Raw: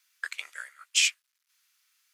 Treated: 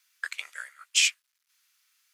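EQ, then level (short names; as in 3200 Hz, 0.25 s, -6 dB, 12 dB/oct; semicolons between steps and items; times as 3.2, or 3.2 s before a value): bell 320 Hz -4.5 dB 0.79 oct; +1.0 dB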